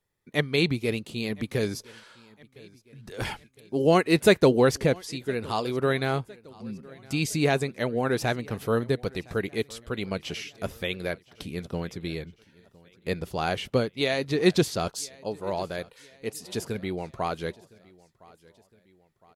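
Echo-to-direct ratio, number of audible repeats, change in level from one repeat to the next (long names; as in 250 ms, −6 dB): −23.0 dB, 2, −6.0 dB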